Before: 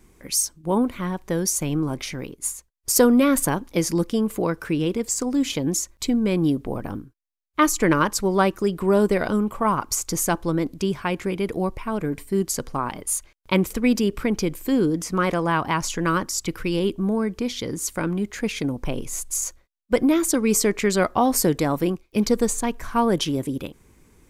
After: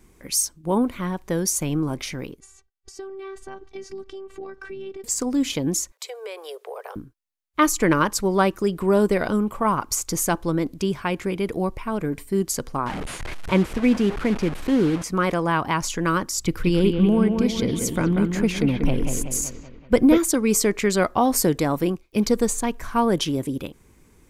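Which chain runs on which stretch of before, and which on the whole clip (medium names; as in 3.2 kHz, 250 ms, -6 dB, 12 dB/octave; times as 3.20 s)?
2.40–5.04 s: compression, threshold -29 dBFS + robot voice 388 Hz + distance through air 130 m
5.92–6.96 s: steep high-pass 410 Hz 96 dB/octave + compression 5:1, threshold -30 dBFS
12.86–15.04 s: one-bit delta coder 64 kbps, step -24 dBFS + tone controls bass +2 dB, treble -14 dB
16.38–20.18 s: bass shelf 270 Hz +7.5 dB + bucket-brigade echo 189 ms, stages 4096, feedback 53%, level -5.5 dB
whole clip: none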